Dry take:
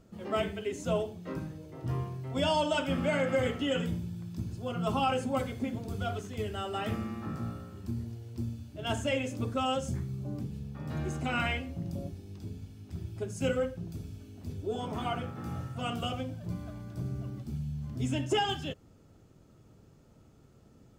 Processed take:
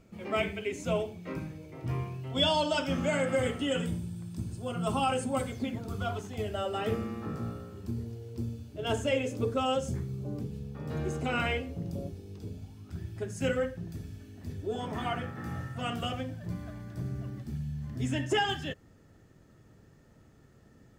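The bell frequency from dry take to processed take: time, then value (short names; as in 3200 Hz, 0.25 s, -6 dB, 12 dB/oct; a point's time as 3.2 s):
bell +13 dB 0.25 oct
2.07 s 2300 Hz
3.28 s 8600 Hz
5.49 s 8600 Hz
5.82 s 1400 Hz
6.84 s 450 Hz
12.45 s 450 Hz
13.02 s 1800 Hz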